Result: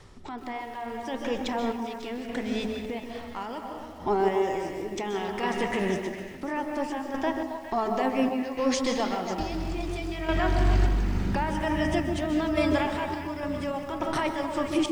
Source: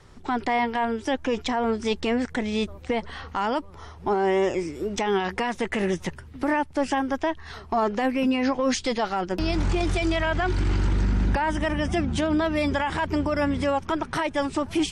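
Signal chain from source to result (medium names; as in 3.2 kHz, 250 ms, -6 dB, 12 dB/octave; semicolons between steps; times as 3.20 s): peaking EQ 1.5 kHz -4 dB 0.26 oct; algorithmic reverb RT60 1.2 s, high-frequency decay 0.6×, pre-delay 105 ms, DRR 5 dB; random-step tremolo, depth 80%; de-hum 72.48 Hz, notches 30; reverse; upward compressor, threshold -39 dBFS; reverse; repeats whose band climbs or falls 136 ms, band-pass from 300 Hz, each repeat 1.4 oct, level -3.5 dB; bit-crushed delay 127 ms, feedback 55%, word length 7-bit, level -15 dB; trim -1.5 dB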